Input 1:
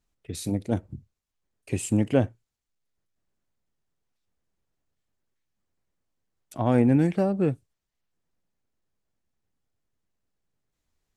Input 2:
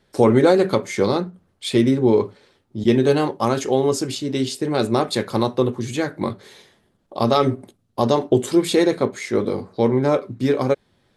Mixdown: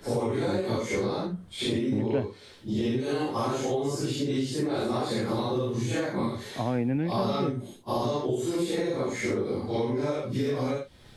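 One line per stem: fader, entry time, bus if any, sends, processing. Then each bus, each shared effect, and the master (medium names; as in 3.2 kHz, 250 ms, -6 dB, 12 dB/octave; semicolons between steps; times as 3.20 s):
-6.5 dB, 0.00 s, no send, low-pass 2.9 kHz 24 dB/octave
-0.5 dB, 0.00 s, no send, phase randomisation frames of 200 ms; bass shelf 74 Hz +7.5 dB; compression 5:1, threshold -26 dBFS, peak gain reduction 15 dB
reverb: none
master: three bands compressed up and down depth 70%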